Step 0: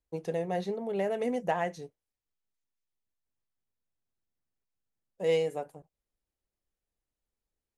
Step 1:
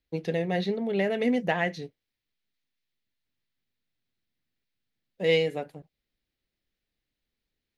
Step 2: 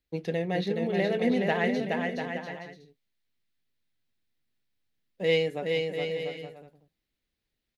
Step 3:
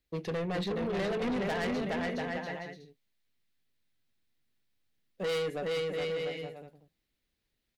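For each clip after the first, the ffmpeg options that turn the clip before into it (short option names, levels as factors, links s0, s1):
-af "equalizer=f=125:t=o:w=1:g=4,equalizer=f=250:t=o:w=1:g=6,equalizer=f=1000:t=o:w=1:g=-5,equalizer=f=2000:t=o:w=1:g=8,equalizer=f=4000:t=o:w=1:g=10,equalizer=f=8000:t=o:w=1:g=-9,volume=1.26"
-af "aecho=1:1:420|693|870.4|985.8|1061:0.631|0.398|0.251|0.158|0.1,volume=0.841"
-af "asoftclip=type=tanh:threshold=0.0299,volume=1.19"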